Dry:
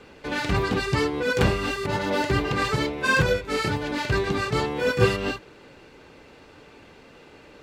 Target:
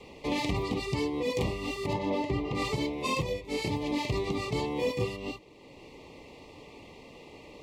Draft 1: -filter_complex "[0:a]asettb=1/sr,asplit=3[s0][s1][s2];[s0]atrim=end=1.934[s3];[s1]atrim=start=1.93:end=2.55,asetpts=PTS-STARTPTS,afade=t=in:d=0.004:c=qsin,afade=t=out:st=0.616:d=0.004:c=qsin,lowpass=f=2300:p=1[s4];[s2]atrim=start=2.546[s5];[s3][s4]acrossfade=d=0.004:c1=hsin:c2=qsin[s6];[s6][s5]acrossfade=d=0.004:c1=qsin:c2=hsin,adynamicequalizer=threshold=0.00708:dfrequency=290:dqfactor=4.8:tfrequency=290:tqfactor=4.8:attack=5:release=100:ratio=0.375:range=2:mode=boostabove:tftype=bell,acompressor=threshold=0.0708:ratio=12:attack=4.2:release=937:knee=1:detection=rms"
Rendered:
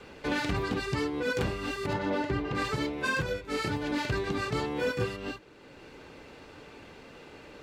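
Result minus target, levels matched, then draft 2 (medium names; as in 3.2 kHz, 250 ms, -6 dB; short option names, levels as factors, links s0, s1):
2 kHz band +5.5 dB
-filter_complex "[0:a]asettb=1/sr,asplit=3[s0][s1][s2];[s0]atrim=end=1.934[s3];[s1]atrim=start=1.93:end=2.55,asetpts=PTS-STARTPTS,afade=t=in:d=0.004:c=qsin,afade=t=out:st=0.616:d=0.004:c=qsin,lowpass=f=2300:p=1[s4];[s2]atrim=start=2.546[s5];[s3][s4]acrossfade=d=0.004:c1=hsin:c2=qsin[s6];[s6][s5]acrossfade=d=0.004:c1=qsin:c2=hsin,adynamicequalizer=threshold=0.00708:dfrequency=290:dqfactor=4.8:tfrequency=290:tqfactor=4.8:attack=5:release=100:ratio=0.375:range=2:mode=boostabove:tftype=bell,asuperstop=centerf=1500:order=8:qfactor=2,acompressor=threshold=0.0708:ratio=12:attack=4.2:release=937:knee=1:detection=rms"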